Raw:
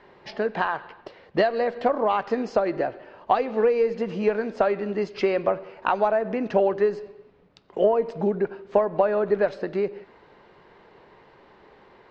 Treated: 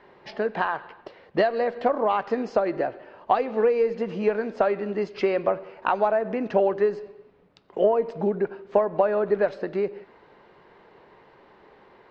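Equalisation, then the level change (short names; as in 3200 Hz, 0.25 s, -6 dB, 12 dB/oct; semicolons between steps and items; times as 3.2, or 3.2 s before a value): low shelf 130 Hz -4.5 dB; high shelf 4200 Hz -5.5 dB; 0.0 dB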